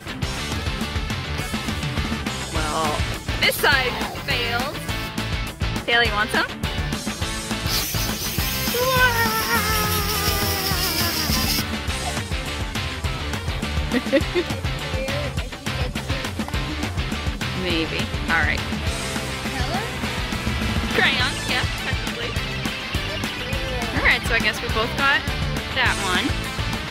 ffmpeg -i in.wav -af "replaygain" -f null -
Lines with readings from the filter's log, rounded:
track_gain = +2.2 dB
track_peak = 0.446